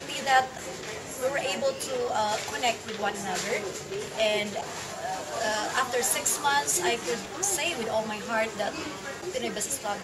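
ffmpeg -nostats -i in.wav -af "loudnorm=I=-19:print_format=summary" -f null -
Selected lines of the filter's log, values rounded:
Input Integrated:    -28.6 LUFS
Input True Peak:      -9.4 dBTP
Input LRA:             3.1 LU
Input Threshold:     -38.6 LUFS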